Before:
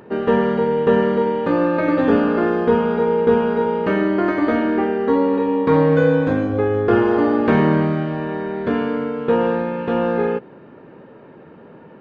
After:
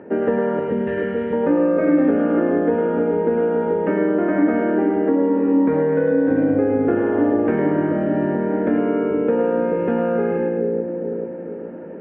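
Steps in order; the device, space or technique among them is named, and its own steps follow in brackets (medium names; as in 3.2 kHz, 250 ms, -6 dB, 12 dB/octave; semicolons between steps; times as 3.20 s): 0.59–1.33 s: high-order bell 550 Hz -15 dB 2.8 oct; high-pass 79 Hz; two-band feedback delay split 500 Hz, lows 434 ms, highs 106 ms, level -4 dB; bass amplifier (compression, threshold -19 dBFS, peak gain reduction 10.5 dB; cabinet simulation 72–2200 Hz, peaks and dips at 75 Hz +6 dB, 130 Hz -9 dB, 290 Hz +7 dB, 560 Hz +5 dB, 1.1 kHz -10 dB); trim +1.5 dB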